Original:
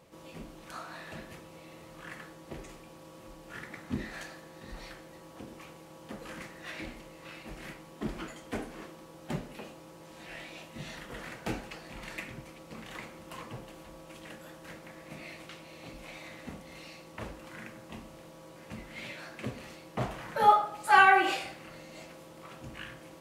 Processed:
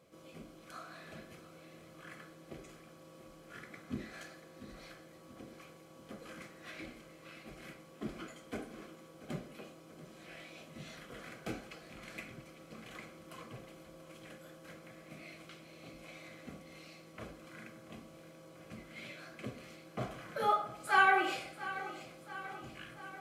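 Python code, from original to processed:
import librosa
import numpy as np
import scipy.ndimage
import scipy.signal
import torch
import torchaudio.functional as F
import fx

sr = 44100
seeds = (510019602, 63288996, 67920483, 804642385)

p1 = fx.notch(x, sr, hz=870.0, q=12.0)
p2 = fx.notch_comb(p1, sr, f0_hz=920.0)
p3 = p2 + fx.echo_feedback(p2, sr, ms=686, feedback_pct=60, wet_db=-15.0, dry=0)
y = F.gain(torch.from_numpy(p3), -5.0).numpy()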